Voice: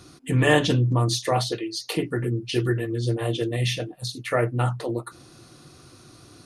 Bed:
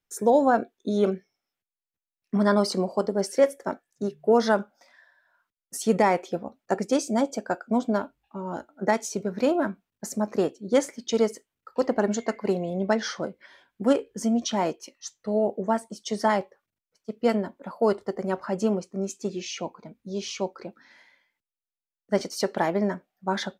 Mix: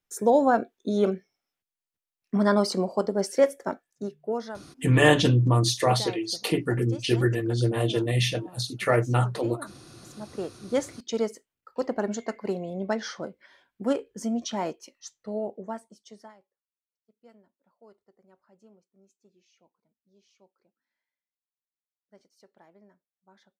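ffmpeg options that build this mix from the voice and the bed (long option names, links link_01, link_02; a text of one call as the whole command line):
ffmpeg -i stem1.wav -i stem2.wav -filter_complex "[0:a]adelay=4550,volume=0.5dB[link_01];[1:a]volume=12dB,afade=type=out:start_time=3.67:duration=0.85:silence=0.149624,afade=type=in:start_time=10.13:duration=0.64:silence=0.237137,afade=type=out:start_time=15:duration=1.34:silence=0.0398107[link_02];[link_01][link_02]amix=inputs=2:normalize=0" out.wav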